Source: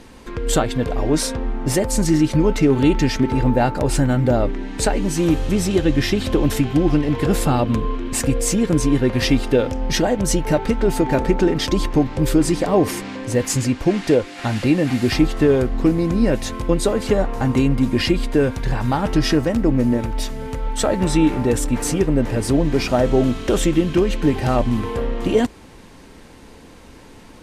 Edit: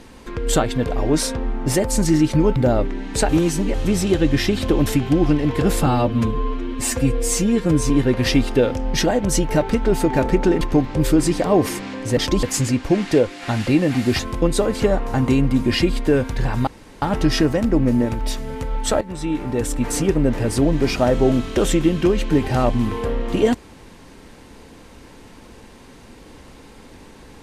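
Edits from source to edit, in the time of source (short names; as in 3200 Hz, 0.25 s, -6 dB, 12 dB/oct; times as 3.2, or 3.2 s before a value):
2.56–4.2 cut
4.93–5.38 reverse
7.5–8.86 stretch 1.5×
11.57–11.83 move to 13.39
15.15–16.46 cut
18.94 insert room tone 0.35 s
20.93–21.91 fade in, from -15.5 dB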